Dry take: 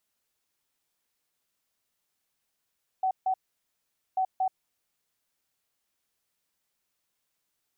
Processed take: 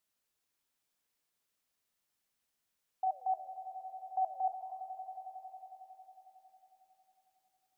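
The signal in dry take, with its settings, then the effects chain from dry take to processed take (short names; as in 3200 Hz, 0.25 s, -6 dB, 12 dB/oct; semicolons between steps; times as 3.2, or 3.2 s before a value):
beep pattern sine 755 Hz, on 0.08 s, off 0.15 s, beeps 2, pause 0.83 s, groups 2, -23 dBFS
flange 1 Hz, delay 5 ms, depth 8.9 ms, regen -87%; on a send: swelling echo 91 ms, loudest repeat 5, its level -16 dB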